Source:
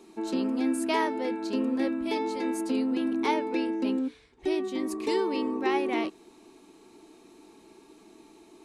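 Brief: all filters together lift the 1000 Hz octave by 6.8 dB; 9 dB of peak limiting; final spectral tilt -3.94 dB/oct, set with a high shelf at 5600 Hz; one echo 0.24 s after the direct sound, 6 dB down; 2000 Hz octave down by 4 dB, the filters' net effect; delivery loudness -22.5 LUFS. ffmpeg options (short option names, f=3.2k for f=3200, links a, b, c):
-af "equalizer=f=1k:t=o:g=9,equalizer=f=2k:t=o:g=-8,highshelf=f=5.6k:g=7.5,alimiter=limit=-19.5dB:level=0:latency=1,aecho=1:1:240:0.501,volume=5.5dB"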